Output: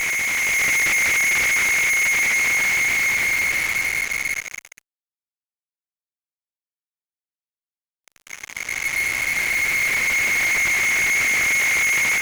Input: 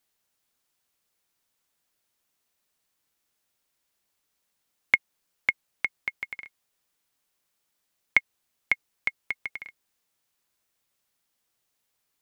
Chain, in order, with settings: Paulstretch 31×, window 0.50 s, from 5.01 s; fuzz box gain 49 dB, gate -48 dBFS; level rider gain up to 4 dB; trim -8.5 dB

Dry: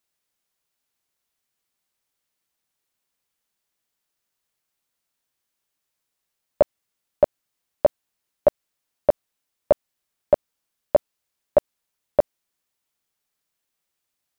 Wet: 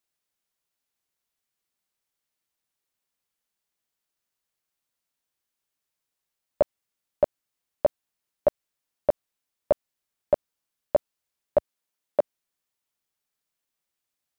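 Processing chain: 11.58–12.20 s: high-pass 78 Hz -> 200 Hz; trim -4.5 dB

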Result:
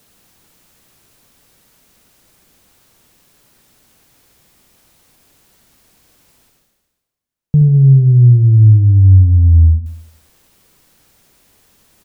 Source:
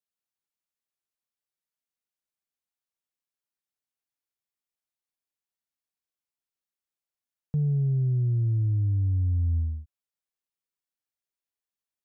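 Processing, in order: bass shelf 440 Hz +12 dB; reverse; upward compressor, threshold -34 dBFS; reverse; feedback delay 73 ms, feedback 56%, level -11.5 dB; trim +5.5 dB

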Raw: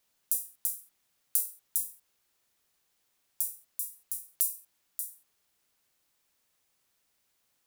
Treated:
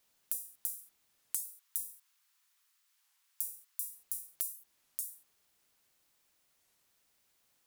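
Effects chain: 1.39–3.85 s: steep high-pass 930 Hz 36 dB/octave; compression 4:1, threshold -34 dBFS, peak gain reduction 10.5 dB; warped record 33 1/3 rpm, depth 250 cents; trim +1 dB

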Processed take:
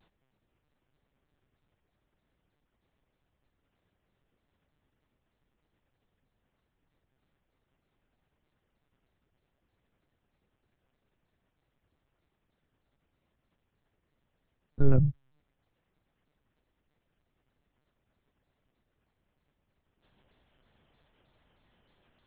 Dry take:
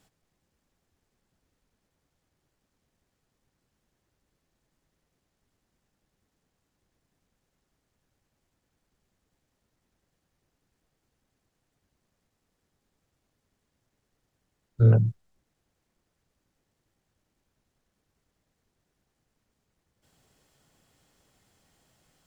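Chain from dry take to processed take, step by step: monotone LPC vocoder at 8 kHz 140 Hz; vibrato with a chosen wave saw down 3.2 Hz, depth 160 cents

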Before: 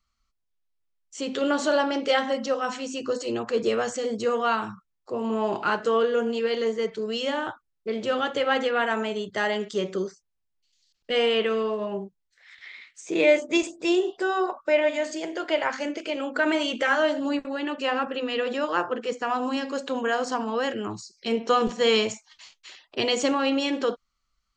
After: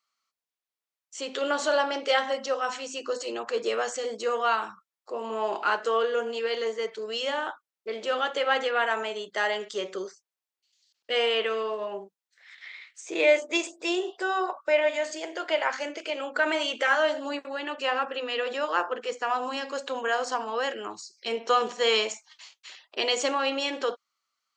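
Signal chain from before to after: high-pass 490 Hz 12 dB/octave

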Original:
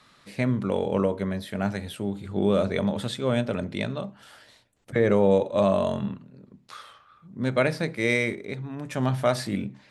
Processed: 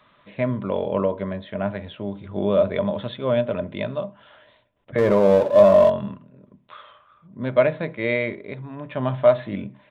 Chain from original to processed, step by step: resampled via 8 kHz; 4.98–5.90 s: power-law waveshaper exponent 0.7; small resonant body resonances 610/1000 Hz, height 11 dB, ringing for 45 ms; trim -1 dB

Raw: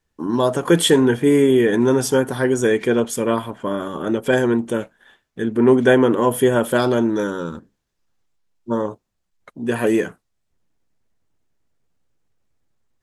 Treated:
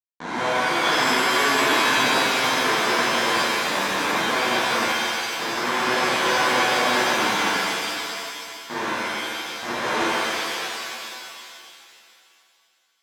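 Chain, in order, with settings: compression 6:1, threshold -21 dBFS, peak gain reduction 12 dB; Schmitt trigger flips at -22.5 dBFS; cabinet simulation 370–6000 Hz, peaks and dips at 380 Hz -10 dB, 1 kHz +6 dB, 1.8 kHz +4 dB, 2.7 kHz -9 dB, 5 kHz -9 dB; on a send: feedback echo behind a high-pass 90 ms, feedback 81%, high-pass 1.9 kHz, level -8 dB; on the sum: pitch-shifted reverb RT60 2.4 s, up +7 st, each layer -2 dB, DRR -10 dB

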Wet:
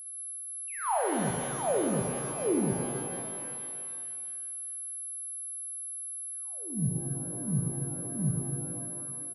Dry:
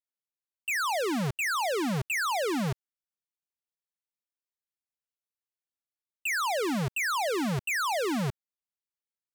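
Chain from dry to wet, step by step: local Wiener filter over 41 samples; painted sound fall, 2.83–3.53 s, 470–1100 Hz -38 dBFS; low-pass sweep 990 Hz -> 150 Hz, 0.74–4.35 s; whistle 11 kHz -36 dBFS; multi-tap echo 58/473 ms -6.5/-17.5 dB; pitch-shifted reverb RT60 2.3 s, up +12 st, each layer -8 dB, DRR 2.5 dB; trim -4.5 dB

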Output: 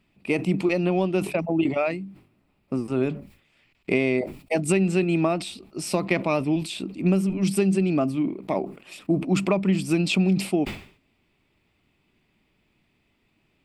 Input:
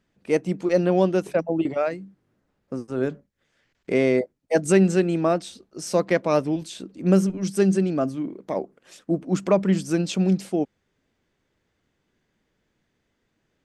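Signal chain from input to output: compression, threshold -22 dBFS, peak gain reduction 10.5 dB; graphic EQ with 31 bands 500 Hz -9 dB, 1.6 kHz -10 dB, 2.5 kHz +10 dB, 6.3 kHz -12 dB; decay stretcher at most 120 dB/s; trim +5 dB

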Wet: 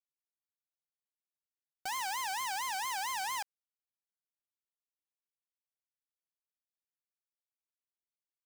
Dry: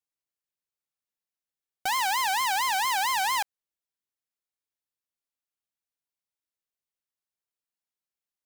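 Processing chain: peak limiter -27 dBFS, peak gain reduction 6 dB; bit crusher 7-bit; trim -4.5 dB

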